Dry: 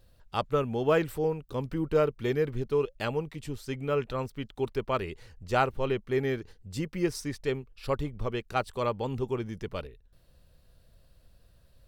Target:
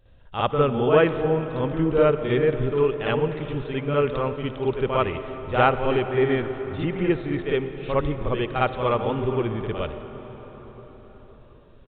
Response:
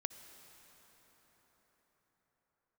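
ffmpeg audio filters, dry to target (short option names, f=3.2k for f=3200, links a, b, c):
-filter_complex "[0:a]asplit=2[a][b];[1:a]atrim=start_sample=2205,adelay=56[c];[b][c]afir=irnorm=-1:irlink=0,volume=8dB[d];[a][d]amix=inputs=2:normalize=0,aresample=8000,aresample=44100"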